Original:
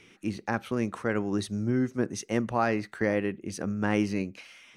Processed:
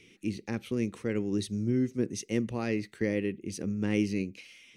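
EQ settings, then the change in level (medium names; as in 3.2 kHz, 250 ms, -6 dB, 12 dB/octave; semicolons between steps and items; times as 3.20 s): high-order bell 1 kHz -13 dB; -1.0 dB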